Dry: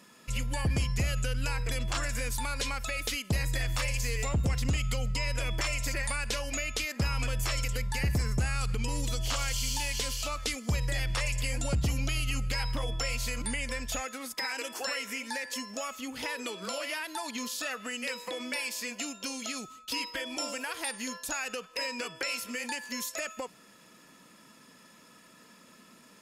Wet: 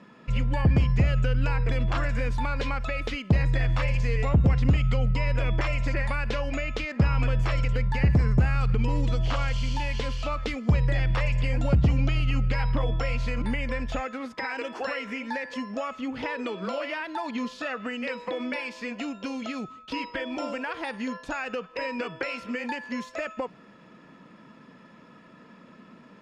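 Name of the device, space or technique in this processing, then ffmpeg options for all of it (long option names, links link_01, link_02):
phone in a pocket: -af "lowpass=3500,equalizer=frequency=160:width_type=o:width=1.1:gain=3,highshelf=frequency=2400:gain=-11,volume=7dB"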